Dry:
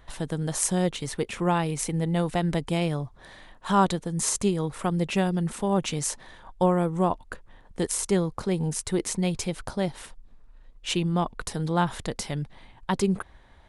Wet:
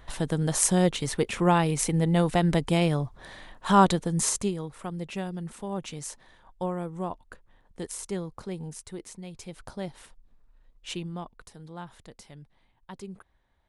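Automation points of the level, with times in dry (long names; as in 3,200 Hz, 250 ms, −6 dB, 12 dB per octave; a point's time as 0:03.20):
0:04.15 +2.5 dB
0:04.71 −9 dB
0:08.50 −9 dB
0:09.26 −16 dB
0:09.67 −8 dB
0:10.93 −8 dB
0:11.51 −17 dB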